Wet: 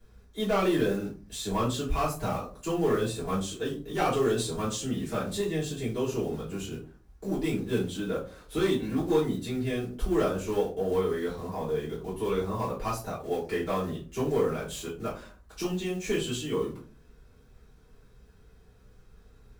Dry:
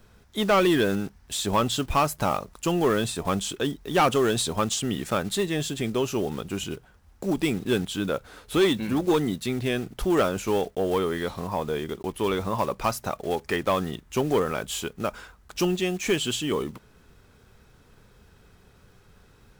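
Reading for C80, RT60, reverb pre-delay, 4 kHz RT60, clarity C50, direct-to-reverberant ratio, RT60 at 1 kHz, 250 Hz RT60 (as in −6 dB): 13.5 dB, 0.40 s, 3 ms, 0.25 s, 8.0 dB, −9.0 dB, 0.35 s, 0.60 s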